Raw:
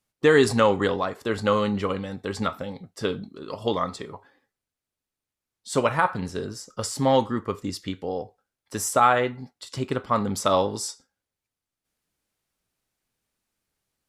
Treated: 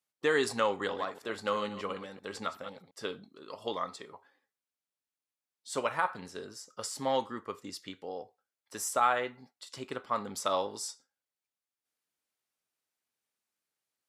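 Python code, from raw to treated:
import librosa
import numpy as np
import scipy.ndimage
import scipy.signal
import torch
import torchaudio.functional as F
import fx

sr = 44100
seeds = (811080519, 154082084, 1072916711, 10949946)

y = fx.reverse_delay(x, sr, ms=126, wet_db=-11, at=(0.68, 2.91))
y = fx.highpass(y, sr, hz=530.0, slope=6)
y = y * librosa.db_to_amplitude(-7.0)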